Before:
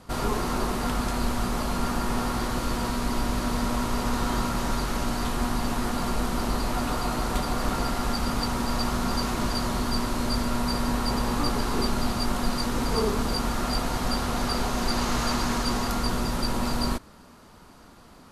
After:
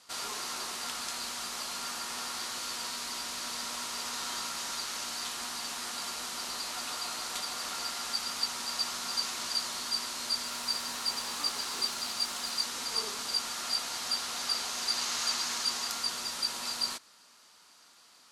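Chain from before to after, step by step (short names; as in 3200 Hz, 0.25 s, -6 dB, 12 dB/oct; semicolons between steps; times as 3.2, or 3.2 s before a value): 10.45–12.65 modulation noise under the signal 24 dB; band-pass 5800 Hz, Q 0.82; gain +3 dB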